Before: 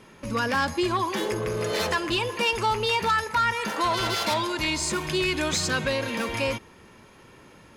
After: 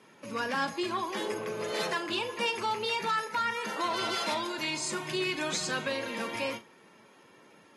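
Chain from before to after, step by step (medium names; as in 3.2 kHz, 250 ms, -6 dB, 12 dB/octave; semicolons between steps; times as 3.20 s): rattle on loud lows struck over -32 dBFS, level -37 dBFS; Bessel high-pass 210 Hz, order 6; on a send: flutter echo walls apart 6.9 m, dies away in 0.2 s; on the sum: trim -7 dB; AAC 32 kbps 48 kHz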